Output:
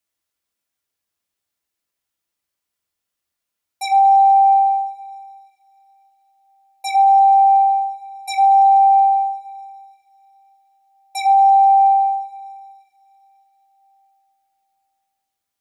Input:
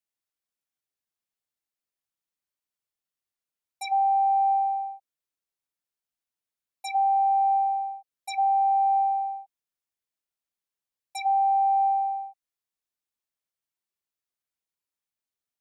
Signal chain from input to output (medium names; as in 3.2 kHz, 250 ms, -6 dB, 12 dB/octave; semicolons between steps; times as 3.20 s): two-slope reverb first 0.31 s, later 3.8 s, from -22 dB, DRR 3.5 dB; trim +8 dB